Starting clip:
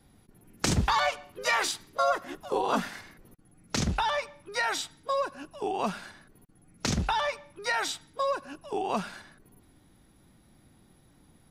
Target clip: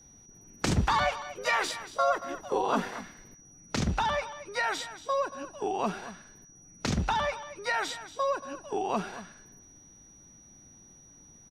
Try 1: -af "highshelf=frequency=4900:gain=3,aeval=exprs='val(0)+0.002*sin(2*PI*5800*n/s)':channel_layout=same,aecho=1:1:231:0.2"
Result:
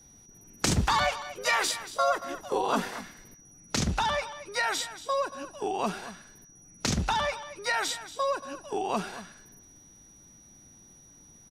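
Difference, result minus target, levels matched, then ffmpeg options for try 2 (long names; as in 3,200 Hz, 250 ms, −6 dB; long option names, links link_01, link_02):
8,000 Hz band +5.0 dB
-af "highshelf=frequency=4900:gain=-8.5,aeval=exprs='val(0)+0.002*sin(2*PI*5800*n/s)':channel_layout=same,aecho=1:1:231:0.2"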